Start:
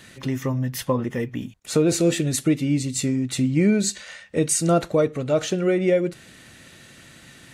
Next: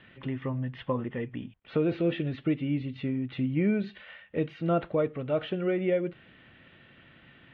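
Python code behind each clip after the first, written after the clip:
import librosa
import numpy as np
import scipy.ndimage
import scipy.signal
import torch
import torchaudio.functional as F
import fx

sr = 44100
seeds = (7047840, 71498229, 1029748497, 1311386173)

y = scipy.signal.sosfilt(scipy.signal.ellip(4, 1.0, 60, 3200.0, 'lowpass', fs=sr, output='sos'), x)
y = F.gain(torch.from_numpy(y), -6.5).numpy()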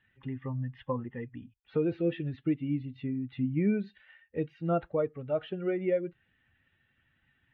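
y = fx.bin_expand(x, sr, power=1.5)
y = fx.high_shelf(y, sr, hz=3000.0, db=-10.0)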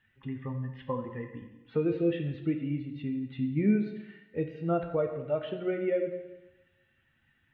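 y = fx.rev_plate(x, sr, seeds[0], rt60_s=1.1, hf_ratio=0.95, predelay_ms=0, drr_db=5.0)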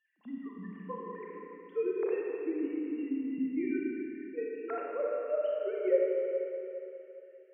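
y = fx.sine_speech(x, sr)
y = fx.rev_schroeder(y, sr, rt60_s=3.0, comb_ms=29, drr_db=-2.5)
y = F.gain(torch.from_numpy(y), -6.0).numpy()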